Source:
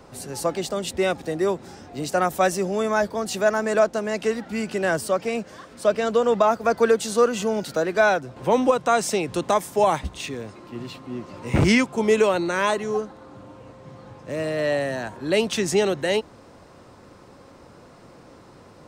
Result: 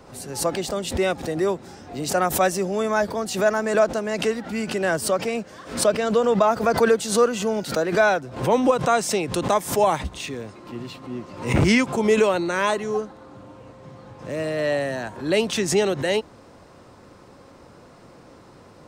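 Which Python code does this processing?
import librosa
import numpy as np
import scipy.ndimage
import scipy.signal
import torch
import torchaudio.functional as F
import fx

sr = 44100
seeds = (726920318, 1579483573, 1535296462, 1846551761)

y = fx.pre_swell(x, sr, db_per_s=120.0)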